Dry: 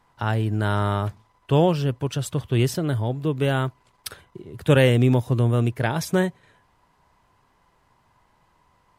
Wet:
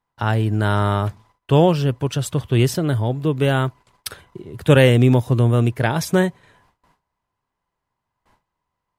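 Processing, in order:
noise gate with hold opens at −50 dBFS
level +4 dB

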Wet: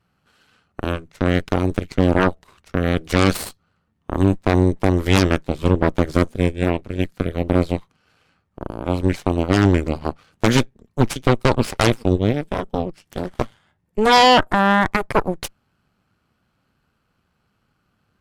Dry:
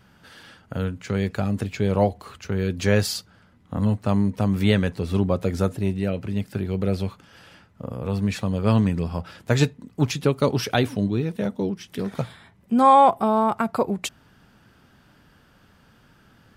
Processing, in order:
speed change −9%
harmonic generator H 3 −27 dB, 5 −30 dB, 6 −7 dB, 7 −19 dB, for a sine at −5.5 dBFS

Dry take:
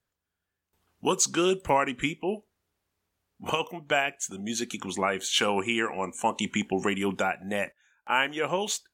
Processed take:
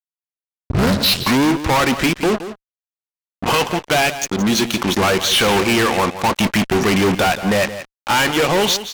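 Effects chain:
turntable start at the beginning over 1.79 s
Butterworth low-pass 5,900 Hz 48 dB per octave
fuzz pedal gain 39 dB, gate −41 dBFS
single-tap delay 171 ms −12.5 dB

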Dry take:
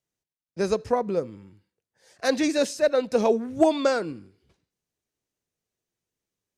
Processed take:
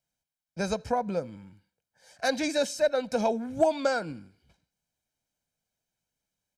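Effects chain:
parametric band 100 Hz −5 dB 0.77 octaves
comb filter 1.3 ms, depth 66%
in parallel at +3 dB: downward compressor, threshold −27 dBFS, peak gain reduction 15 dB
on the sum: level −8 dB

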